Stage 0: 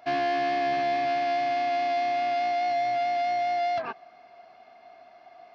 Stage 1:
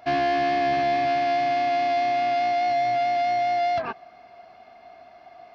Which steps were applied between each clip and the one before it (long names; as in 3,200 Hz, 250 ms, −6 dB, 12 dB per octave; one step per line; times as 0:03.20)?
low-shelf EQ 130 Hz +11.5 dB
level +3 dB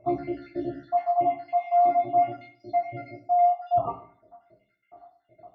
time-frequency cells dropped at random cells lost 74%
Savitzky-Golay smoothing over 65 samples
convolution reverb RT60 0.50 s, pre-delay 4 ms, DRR −0.5 dB
level −1 dB